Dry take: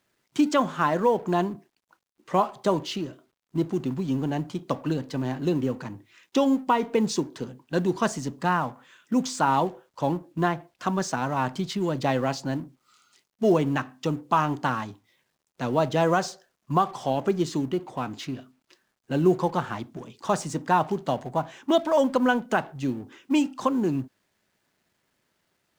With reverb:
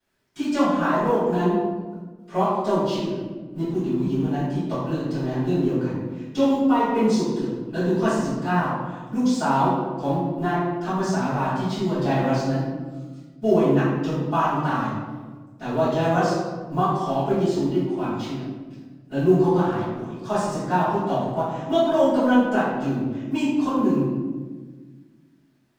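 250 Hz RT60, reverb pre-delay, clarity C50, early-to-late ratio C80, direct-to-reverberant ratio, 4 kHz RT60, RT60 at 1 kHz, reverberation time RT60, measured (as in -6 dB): 2.2 s, 3 ms, -0.5 dB, 2.0 dB, -17.0 dB, 0.80 s, 1.2 s, 1.4 s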